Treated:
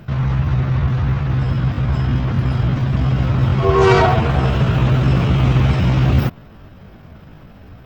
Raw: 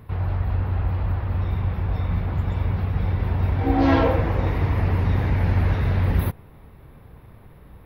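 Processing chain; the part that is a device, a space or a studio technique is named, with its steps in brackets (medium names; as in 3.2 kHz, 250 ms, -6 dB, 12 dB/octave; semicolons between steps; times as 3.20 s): chipmunk voice (pitch shift +6 st); trim +6 dB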